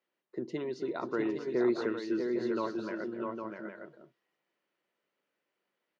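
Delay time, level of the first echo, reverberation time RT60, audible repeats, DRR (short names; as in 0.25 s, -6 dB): 0.257 s, -13.0 dB, none, 3, none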